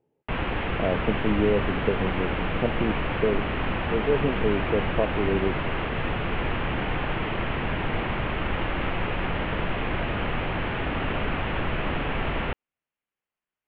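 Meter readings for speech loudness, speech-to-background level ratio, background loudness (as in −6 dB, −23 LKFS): −28.0 LKFS, 0.5 dB, −28.5 LKFS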